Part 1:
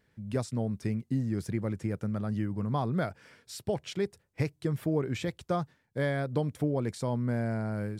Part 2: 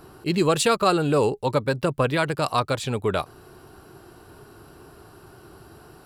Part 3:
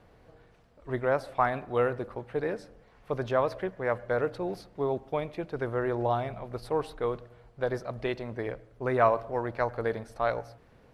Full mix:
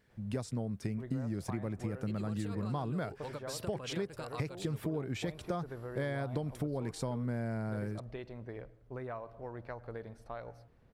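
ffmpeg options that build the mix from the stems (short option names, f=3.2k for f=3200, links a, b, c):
-filter_complex "[0:a]volume=0dB,asplit=2[a][b];[1:a]acompressor=threshold=-21dB:ratio=6,adelay=1800,volume=-9.5dB[c];[2:a]lowshelf=f=250:g=8,adelay=100,volume=-11.5dB[d];[b]apad=whole_len=346341[e];[c][e]sidechaincompress=threshold=-35dB:ratio=8:attack=16:release=194[f];[f][d]amix=inputs=2:normalize=0,acompressor=threshold=-39dB:ratio=6,volume=0dB[g];[a][g]amix=inputs=2:normalize=0,acompressor=threshold=-32dB:ratio=6"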